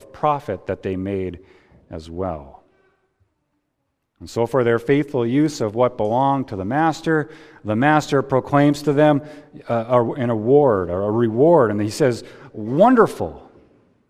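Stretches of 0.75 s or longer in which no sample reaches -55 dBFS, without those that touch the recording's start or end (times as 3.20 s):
3.23–4.16 s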